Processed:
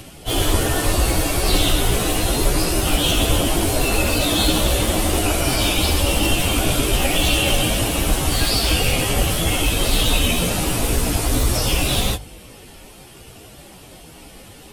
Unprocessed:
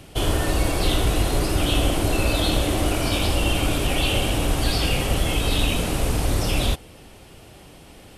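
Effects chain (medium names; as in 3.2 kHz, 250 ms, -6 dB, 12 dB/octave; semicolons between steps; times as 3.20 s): one-sided wavefolder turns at -16 dBFS; treble shelf 5.2 kHz +6.5 dB; hum notches 50/100/150 Hz; plain phase-vocoder stretch 1.8×; trim +6 dB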